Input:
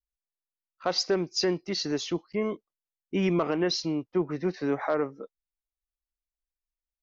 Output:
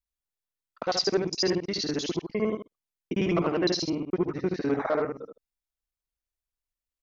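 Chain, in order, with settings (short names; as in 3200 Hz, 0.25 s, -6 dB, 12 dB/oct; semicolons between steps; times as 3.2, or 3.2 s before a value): local time reversal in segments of 51 ms; echo 74 ms -6.5 dB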